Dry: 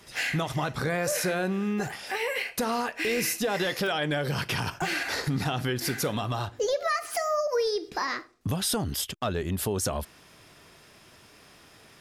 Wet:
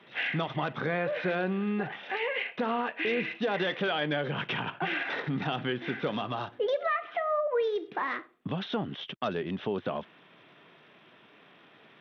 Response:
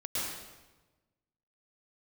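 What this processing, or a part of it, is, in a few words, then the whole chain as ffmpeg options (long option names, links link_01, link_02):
Bluetooth headset: -af "highpass=frequency=150:width=0.5412,highpass=frequency=150:width=1.3066,aresample=8000,aresample=44100,volume=-1.5dB" -ar 32000 -c:a sbc -b:a 64k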